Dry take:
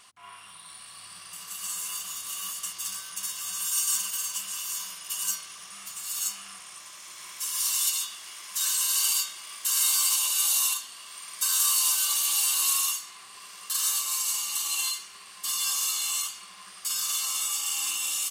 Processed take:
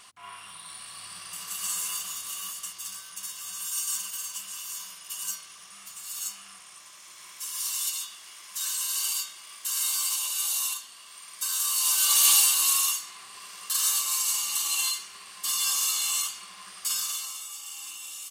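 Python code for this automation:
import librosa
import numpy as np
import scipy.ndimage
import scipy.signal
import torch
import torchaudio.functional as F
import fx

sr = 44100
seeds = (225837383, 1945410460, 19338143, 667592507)

y = fx.gain(x, sr, db=fx.line((1.77, 3.0), (2.83, -4.0), (11.69, -4.0), (12.29, 8.0), (12.56, 1.5), (16.92, 1.5), (17.44, -10.5)))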